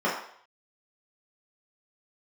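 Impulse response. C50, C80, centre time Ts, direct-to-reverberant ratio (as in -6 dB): 4.5 dB, 7.5 dB, 41 ms, -7.5 dB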